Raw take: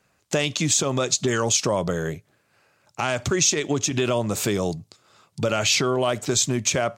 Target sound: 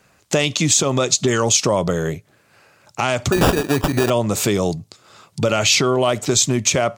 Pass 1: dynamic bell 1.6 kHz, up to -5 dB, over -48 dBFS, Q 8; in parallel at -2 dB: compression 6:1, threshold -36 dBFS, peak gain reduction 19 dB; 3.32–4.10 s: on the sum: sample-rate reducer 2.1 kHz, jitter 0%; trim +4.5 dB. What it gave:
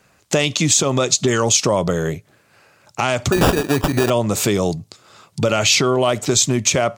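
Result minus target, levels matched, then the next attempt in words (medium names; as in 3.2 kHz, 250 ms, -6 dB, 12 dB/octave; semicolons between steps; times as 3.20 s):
compression: peak gain reduction -6 dB
dynamic bell 1.6 kHz, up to -5 dB, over -48 dBFS, Q 8; in parallel at -2 dB: compression 6:1, threshold -43.5 dBFS, peak gain reduction 25 dB; 3.32–4.10 s: on the sum: sample-rate reducer 2.1 kHz, jitter 0%; trim +4.5 dB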